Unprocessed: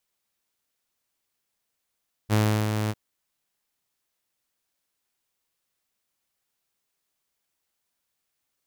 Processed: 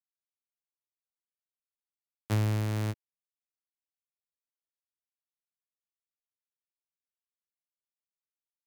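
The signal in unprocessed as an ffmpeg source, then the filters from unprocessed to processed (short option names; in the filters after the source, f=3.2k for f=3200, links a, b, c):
-f lavfi -i "aevalsrc='0.168*(2*mod(107*t,1)-1)':d=0.651:s=44100,afade=t=in:d=0.043,afade=t=out:st=0.043:d=0.339:silence=0.501,afade=t=out:st=0.61:d=0.041"
-filter_complex "[0:a]acrossover=split=120[a][b];[b]acompressor=threshold=-31dB:ratio=4[c];[a][c]amix=inputs=2:normalize=0,aeval=exprs='sgn(val(0))*max(abs(val(0))-0.00355,0)':c=same"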